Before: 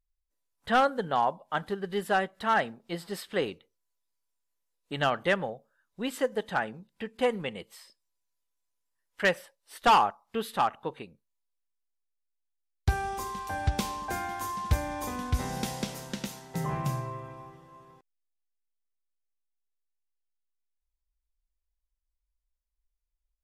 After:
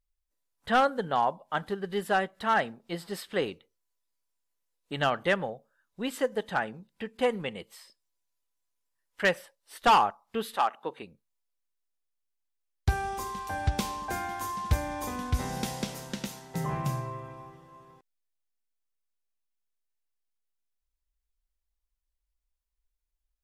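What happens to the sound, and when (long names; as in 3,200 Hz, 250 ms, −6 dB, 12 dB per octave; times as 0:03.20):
0:10.55–0:11.01: high-pass filter 450 Hz → 190 Hz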